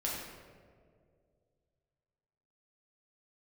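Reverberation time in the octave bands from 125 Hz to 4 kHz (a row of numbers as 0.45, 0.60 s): 2.9, 2.4, 2.6, 1.7, 1.3, 0.90 s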